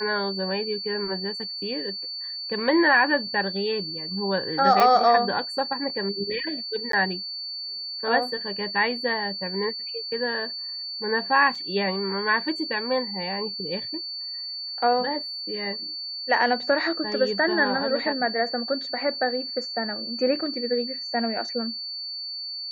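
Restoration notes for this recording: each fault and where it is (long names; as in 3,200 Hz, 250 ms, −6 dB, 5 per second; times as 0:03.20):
whistle 4,500 Hz −31 dBFS
0:04.80: click −8 dBFS
0:06.92–0:06.93: drop-out 13 ms
0:11.55: drop-out 4.7 ms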